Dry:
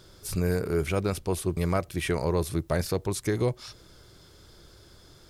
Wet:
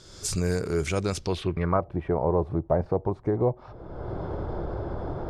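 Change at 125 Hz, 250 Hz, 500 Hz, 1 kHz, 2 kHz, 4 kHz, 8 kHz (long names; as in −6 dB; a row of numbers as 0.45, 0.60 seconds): +1.0 dB, +1.0 dB, +2.5 dB, +4.5 dB, −2.5 dB, −0.5 dB, can't be measured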